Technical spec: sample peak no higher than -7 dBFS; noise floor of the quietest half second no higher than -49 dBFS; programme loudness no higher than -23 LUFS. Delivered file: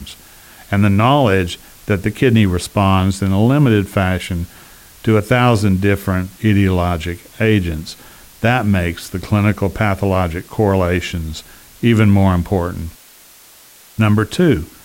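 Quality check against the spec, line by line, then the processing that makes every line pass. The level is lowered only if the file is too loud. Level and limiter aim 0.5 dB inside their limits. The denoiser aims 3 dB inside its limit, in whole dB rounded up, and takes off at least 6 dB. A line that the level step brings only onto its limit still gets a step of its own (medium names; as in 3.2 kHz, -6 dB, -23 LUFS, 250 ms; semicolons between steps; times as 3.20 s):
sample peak -3.0 dBFS: fail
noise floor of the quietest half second -44 dBFS: fail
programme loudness -16.0 LUFS: fail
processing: trim -7.5 dB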